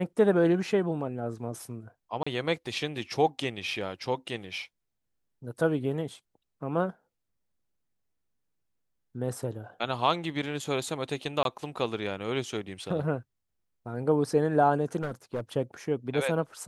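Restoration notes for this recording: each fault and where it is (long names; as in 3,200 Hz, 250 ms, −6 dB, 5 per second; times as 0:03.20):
0:02.23–0:02.27: drop-out 35 ms
0:11.43–0:11.45: drop-out 22 ms
0:15.02–0:15.40: clipping −27 dBFS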